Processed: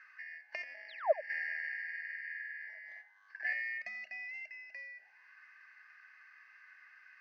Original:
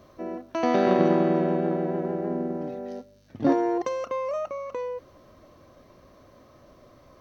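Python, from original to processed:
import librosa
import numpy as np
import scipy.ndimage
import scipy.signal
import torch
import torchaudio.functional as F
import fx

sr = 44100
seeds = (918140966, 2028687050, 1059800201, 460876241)

p1 = fx.band_shuffle(x, sr, order='3142')
p2 = fx.high_shelf(p1, sr, hz=2600.0, db=9.0)
p3 = fx.notch(p2, sr, hz=1400.0, q=11.0)
p4 = fx.over_compress(p3, sr, threshold_db=-26.0, ratio=-0.5, at=(0.52, 1.3))
p5 = fx.spec_paint(p4, sr, seeds[0], shape='fall', start_s=0.88, length_s=0.25, low_hz=490.0, high_hz=4900.0, level_db=-30.0)
p6 = fx.auto_wah(p5, sr, base_hz=630.0, top_hz=1300.0, q=9.9, full_db=-28.0, direction='down')
p7 = p6 + fx.echo_single(p6, sr, ms=86, db=-16.0, dry=0)
y = p7 * librosa.db_to_amplitude(10.0)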